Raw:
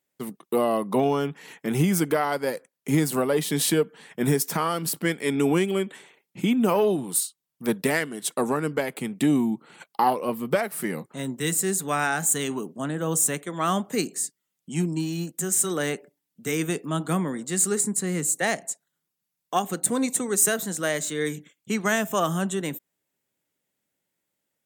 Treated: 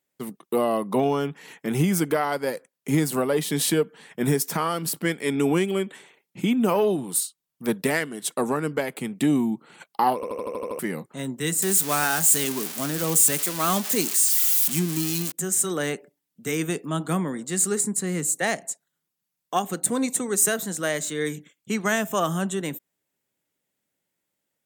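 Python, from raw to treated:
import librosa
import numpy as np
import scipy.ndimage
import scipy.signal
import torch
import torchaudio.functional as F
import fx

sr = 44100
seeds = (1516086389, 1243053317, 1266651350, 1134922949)

y = fx.crossing_spikes(x, sr, level_db=-16.5, at=(11.62, 15.32))
y = fx.edit(y, sr, fx.stutter_over(start_s=10.15, slice_s=0.08, count=8), tone=tone)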